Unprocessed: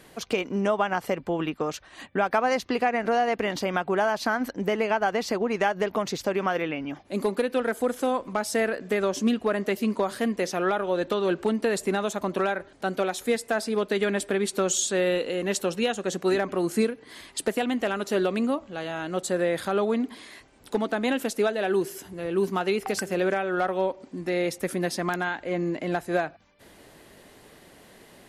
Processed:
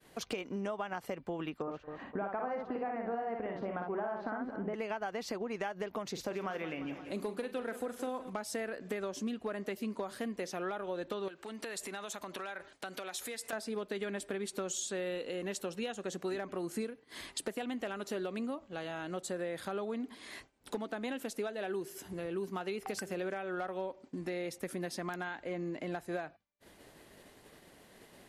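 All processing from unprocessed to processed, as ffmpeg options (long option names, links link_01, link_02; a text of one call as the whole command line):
ffmpeg -i in.wav -filter_complex "[0:a]asettb=1/sr,asplit=3[link_01][link_02][link_03];[link_01]atrim=end=1.624[link_04];[link_02]atrim=start=1.62:end=4.74,asetpts=PTS-STARTPTS,afade=type=in:duration=0.004:curve=qsin,afade=type=out:start_time=3.116:duration=0.004:curve=qsin,lowpass=1300,aecho=1:1:56|215|255|511:0.668|0.106|0.2|0.112,atrim=end_sample=137592[link_05];[link_03]atrim=start=4.736[link_06];[link_04][link_05]acrossfade=duration=0.004:curve1=hsin:curve2=qsin[link_07];[link_07][link_06]acrossfade=duration=0.004:curve1=qsin:curve2=hsin,asettb=1/sr,asplit=3[link_08][link_09][link_10];[link_08]atrim=end=6.114[link_11];[link_09]atrim=start=6.11:end=8.3,asetpts=PTS-STARTPTS,afade=type=in:duration=0.004:curve=qsin,afade=type=out:start_time=2.186:duration=0.004:curve=qsin,asplit=2[link_12][link_13];[link_13]adelay=43,volume=-12.5dB[link_14];[link_12][link_14]amix=inputs=2:normalize=0,atrim=end_sample=96579,aecho=1:1:173|346|519|692|865:0.178|0.096|0.0519|0.028|0.0151,atrim=end_sample=96579[link_15];[link_10]atrim=start=8.296[link_16];[link_11][link_15]acrossfade=duration=0.004:curve1=hsin:curve2=qsin[link_17];[link_17][link_16]acrossfade=duration=0.004:curve1=qsin:curve2=hsin,asettb=1/sr,asplit=3[link_18][link_19][link_20];[link_18]atrim=end=11.284[link_21];[link_19]atrim=start=11.28:end=13.53,asetpts=PTS-STARTPTS,afade=type=in:duration=0.004:curve=qsin,afade=type=out:start_time=2.246:duration=0.004:curve=qsin,acompressor=threshold=-37dB:ratio=3:attack=3.2:release=140:knee=1:detection=peak,tiltshelf=frequency=680:gain=-6.5[link_22];[link_20]atrim=start=13.526[link_23];[link_21][link_22]acrossfade=duration=0.004:curve1=hsin:curve2=qsin[link_24];[link_24][link_23]acrossfade=duration=0.004:curve1=qsin:curve2=hsin,acompressor=threshold=-39dB:ratio=3,agate=range=-33dB:threshold=-45dB:ratio=3:detection=peak" out.wav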